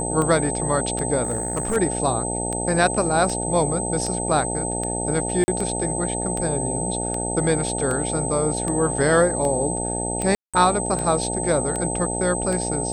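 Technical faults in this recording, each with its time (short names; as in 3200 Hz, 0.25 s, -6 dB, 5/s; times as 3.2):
buzz 60 Hz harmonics 15 -28 dBFS
tick 78 rpm -14 dBFS
tone 8200 Hz -27 dBFS
1.23–1.77 clipped -19 dBFS
5.44–5.48 gap 40 ms
10.35–10.54 gap 0.186 s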